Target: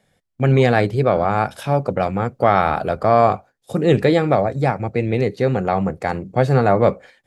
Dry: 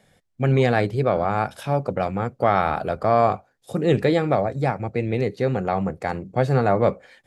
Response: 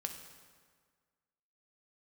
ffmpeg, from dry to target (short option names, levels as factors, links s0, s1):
-af "agate=range=0.398:threshold=0.00794:ratio=16:detection=peak,volume=1.58"